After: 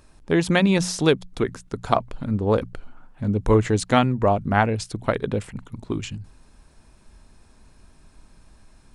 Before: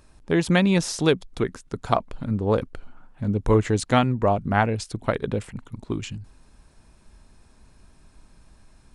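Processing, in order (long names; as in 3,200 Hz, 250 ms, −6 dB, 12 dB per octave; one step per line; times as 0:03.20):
mains-hum notches 60/120/180 Hz
level +1.5 dB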